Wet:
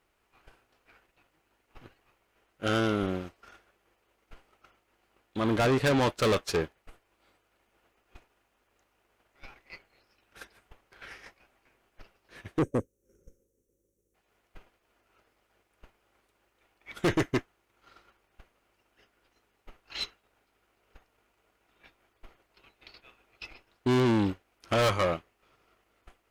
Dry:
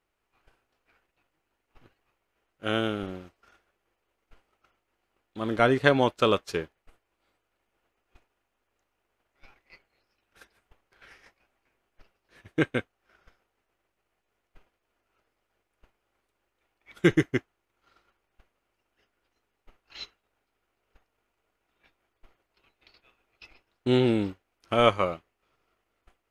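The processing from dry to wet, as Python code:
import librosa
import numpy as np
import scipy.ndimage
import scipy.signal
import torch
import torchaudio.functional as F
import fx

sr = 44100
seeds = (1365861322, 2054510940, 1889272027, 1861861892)

y = fx.spec_box(x, sr, start_s=12.59, length_s=1.56, low_hz=570.0, high_hz=5500.0, gain_db=-28)
y = fx.tube_stage(y, sr, drive_db=29.0, bias=0.3)
y = y * 10.0 ** (7.5 / 20.0)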